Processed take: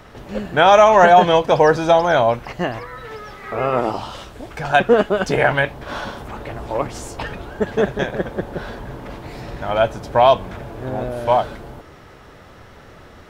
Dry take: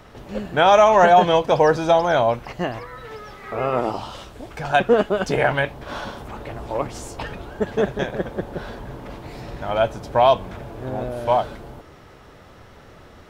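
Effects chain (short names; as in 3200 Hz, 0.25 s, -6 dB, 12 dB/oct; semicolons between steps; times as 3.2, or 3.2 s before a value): bell 1700 Hz +2 dB; gain +2.5 dB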